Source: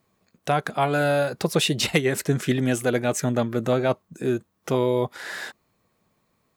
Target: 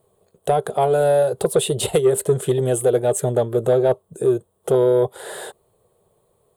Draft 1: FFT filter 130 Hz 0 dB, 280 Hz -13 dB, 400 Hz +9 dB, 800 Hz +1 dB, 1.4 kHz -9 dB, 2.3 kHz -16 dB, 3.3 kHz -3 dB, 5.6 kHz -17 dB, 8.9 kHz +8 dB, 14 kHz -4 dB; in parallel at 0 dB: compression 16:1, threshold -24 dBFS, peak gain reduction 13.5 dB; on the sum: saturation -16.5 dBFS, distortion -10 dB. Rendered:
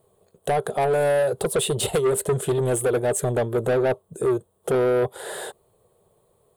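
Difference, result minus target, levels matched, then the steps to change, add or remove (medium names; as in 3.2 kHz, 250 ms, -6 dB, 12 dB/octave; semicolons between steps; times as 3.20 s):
saturation: distortion +13 dB
change: saturation -6 dBFS, distortion -22 dB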